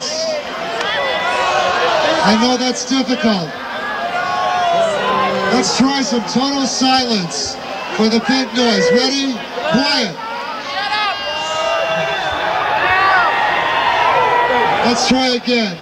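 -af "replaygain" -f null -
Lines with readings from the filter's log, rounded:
track_gain = -3.6 dB
track_peak = 0.559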